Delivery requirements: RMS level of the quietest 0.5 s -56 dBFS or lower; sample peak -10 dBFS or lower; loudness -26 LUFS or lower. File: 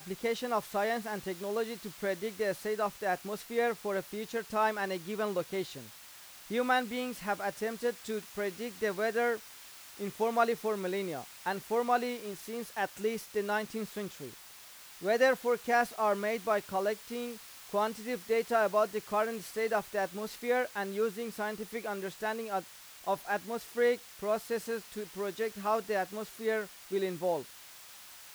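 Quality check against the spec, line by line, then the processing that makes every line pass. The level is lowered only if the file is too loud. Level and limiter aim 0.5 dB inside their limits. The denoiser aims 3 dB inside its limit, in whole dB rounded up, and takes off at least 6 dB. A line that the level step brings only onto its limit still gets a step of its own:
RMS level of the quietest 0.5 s -52 dBFS: fail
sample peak -14.0 dBFS: OK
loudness -33.5 LUFS: OK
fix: denoiser 7 dB, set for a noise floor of -52 dBFS

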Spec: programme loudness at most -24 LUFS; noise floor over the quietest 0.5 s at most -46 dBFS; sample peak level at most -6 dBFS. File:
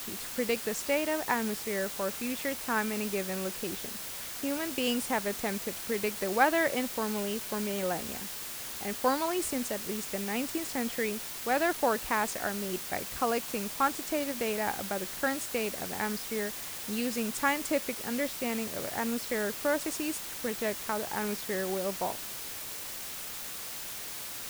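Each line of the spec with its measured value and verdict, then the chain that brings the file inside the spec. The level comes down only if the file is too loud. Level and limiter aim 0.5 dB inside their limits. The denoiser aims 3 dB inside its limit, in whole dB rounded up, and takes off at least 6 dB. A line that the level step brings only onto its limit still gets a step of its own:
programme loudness -31.5 LUFS: OK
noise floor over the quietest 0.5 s -40 dBFS: fail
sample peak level -11.0 dBFS: OK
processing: denoiser 9 dB, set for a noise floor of -40 dBFS

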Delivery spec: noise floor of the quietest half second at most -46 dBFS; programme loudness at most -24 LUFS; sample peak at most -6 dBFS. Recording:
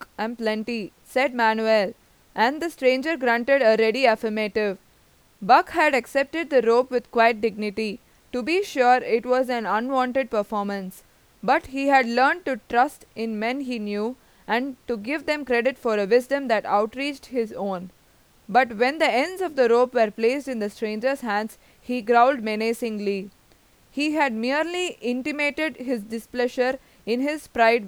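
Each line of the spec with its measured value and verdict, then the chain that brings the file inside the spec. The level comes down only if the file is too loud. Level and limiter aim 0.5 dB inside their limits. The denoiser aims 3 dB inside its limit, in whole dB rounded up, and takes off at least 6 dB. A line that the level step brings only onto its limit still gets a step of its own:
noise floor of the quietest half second -58 dBFS: OK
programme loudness -23.0 LUFS: fail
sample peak -3.5 dBFS: fail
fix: gain -1.5 dB; limiter -6.5 dBFS

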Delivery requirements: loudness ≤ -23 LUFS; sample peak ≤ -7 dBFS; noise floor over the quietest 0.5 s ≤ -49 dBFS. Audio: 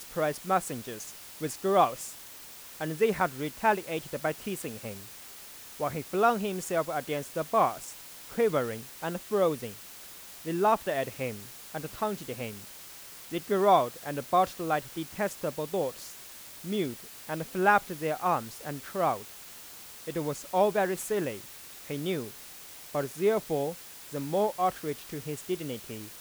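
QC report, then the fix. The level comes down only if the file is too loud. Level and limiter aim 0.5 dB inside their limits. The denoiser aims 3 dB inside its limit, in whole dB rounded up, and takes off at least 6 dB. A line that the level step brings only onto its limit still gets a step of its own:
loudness -30.5 LUFS: OK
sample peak -8.5 dBFS: OK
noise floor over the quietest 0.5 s -47 dBFS: fail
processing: denoiser 6 dB, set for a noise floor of -47 dBFS

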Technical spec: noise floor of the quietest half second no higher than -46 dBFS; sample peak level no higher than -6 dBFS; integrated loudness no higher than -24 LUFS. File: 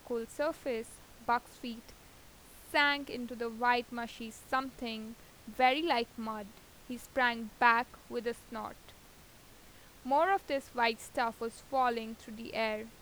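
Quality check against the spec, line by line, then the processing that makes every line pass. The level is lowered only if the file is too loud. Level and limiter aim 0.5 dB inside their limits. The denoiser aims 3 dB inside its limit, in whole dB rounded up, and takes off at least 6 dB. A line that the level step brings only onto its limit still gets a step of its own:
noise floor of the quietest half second -57 dBFS: OK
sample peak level -11.5 dBFS: OK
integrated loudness -33.5 LUFS: OK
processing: none

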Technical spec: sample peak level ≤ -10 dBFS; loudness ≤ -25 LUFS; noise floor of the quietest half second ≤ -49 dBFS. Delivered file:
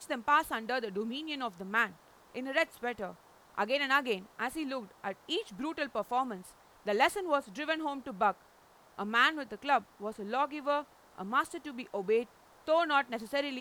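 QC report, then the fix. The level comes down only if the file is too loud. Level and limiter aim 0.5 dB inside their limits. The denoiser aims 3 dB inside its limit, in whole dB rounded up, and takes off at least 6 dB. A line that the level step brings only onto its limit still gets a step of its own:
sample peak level -13.0 dBFS: OK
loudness -32.5 LUFS: OK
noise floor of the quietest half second -61 dBFS: OK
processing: none

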